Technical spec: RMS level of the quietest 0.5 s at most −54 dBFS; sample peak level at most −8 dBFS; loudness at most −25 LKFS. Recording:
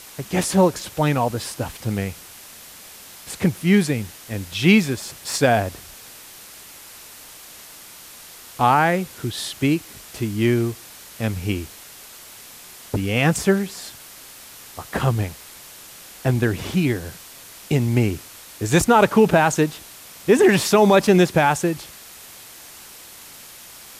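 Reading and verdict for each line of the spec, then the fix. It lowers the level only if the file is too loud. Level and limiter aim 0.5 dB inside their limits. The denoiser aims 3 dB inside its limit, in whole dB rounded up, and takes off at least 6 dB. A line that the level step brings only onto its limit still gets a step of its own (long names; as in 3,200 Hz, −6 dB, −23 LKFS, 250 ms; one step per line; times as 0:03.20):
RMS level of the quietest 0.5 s −42 dBFS: out of spec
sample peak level −5.0 dBFS: out of spec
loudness −20.0 LKFS: out of spec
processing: broadband denoise 10 dB, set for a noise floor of −42 dBFS
level −5.5 dB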